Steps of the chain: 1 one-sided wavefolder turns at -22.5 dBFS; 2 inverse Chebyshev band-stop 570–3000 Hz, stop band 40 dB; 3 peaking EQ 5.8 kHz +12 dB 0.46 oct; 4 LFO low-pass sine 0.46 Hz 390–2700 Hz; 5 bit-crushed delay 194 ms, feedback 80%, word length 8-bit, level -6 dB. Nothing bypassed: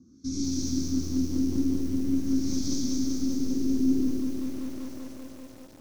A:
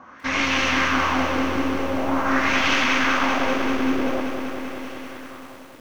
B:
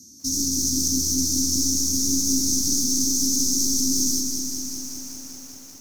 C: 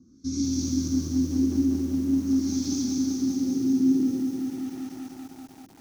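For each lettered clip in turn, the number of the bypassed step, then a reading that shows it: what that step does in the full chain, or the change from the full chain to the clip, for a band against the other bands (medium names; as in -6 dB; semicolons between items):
2, 500 Hz band +13.5 dB; 4, 8 kHz band +21.0 dB; 1, distortion -4 dB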